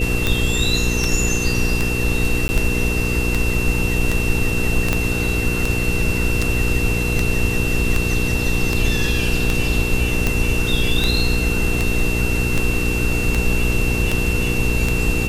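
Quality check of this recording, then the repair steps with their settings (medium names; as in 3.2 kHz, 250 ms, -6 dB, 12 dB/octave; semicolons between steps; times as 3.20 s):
hum 60 Hz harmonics 8 -23 dBFS
tick 78 rpm -4 dBFS
whine 2.7 kHz -24 dBFS
2.48–2.49 s: dropout 10 ms
4.93 s: pop -3 dBFS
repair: de-click; band-stop 2.7 kHz, Q 30; de-hum 60 Hz, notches 8; interpolate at 2.48 s, 10 ms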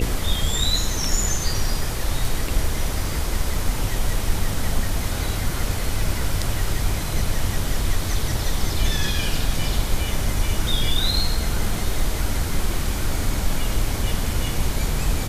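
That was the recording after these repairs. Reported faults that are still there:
4.93 s: pop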